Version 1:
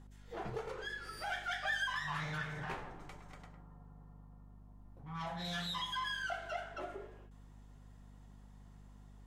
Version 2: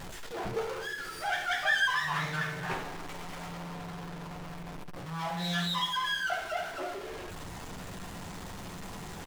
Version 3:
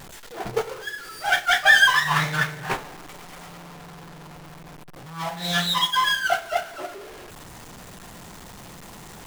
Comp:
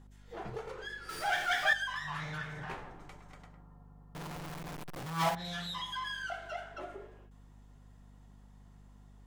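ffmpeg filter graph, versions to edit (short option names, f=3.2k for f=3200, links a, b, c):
-filter_complex "[0:a]asplit=3[a][b][c];[a]atrim=end=1.092[d];[1:a]atrim=start=1.088:end=1.732[e];[b]atrim=start=1.728:end=4.152[f];[2:a]atrim=start=4.148:end=5.352[g];[c]atrim=start=5.348[h];[d][e]acrossfade=d=0.004:c1=hsin:c2=hsin[i];[i][f]acrossfade=d=0.004:c1=hsin:c2=hsin[j];[j][g]acrossfade=d=0.004:c1=hsin:c2=hsin[k];[k][h]acrossfade=d=0.004:c1=hsin:c2=hsin"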